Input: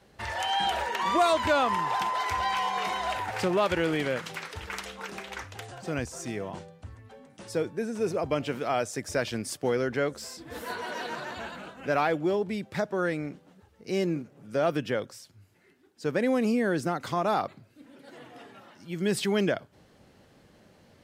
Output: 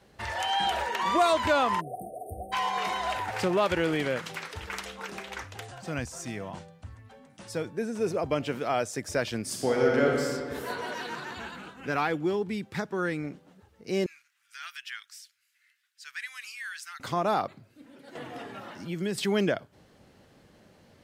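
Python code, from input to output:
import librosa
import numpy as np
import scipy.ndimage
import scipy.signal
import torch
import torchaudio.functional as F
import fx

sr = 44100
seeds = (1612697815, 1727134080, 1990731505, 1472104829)

y = fx.spec_erase(x, sr, start_s=1.8, length_s=0.73, low_hz=760.0, high_hz=8500.0)
y = fx.peak_eq(y, sr, hz=400.0, db=-6.5, octaves=0.77, at=(5.68, 7.68))
y = fx.reverb_throw(y, sr, start_s=9.42, length_s=0.8, rt60_s=2.1, drr_db=-2.0)
y = fx.peak_eq(y, sr, hz=610.0, db=-10.5, octaves=0.39, at=(10.94, 13.24))
y = fx.cheby2_highpass(y, sr, hz=620.0, order=4, stop_db=50, at=(14.06, 17.0))
y = fx.band_squash(y, sr, depth_pct=70, at=(18.15, 19.18))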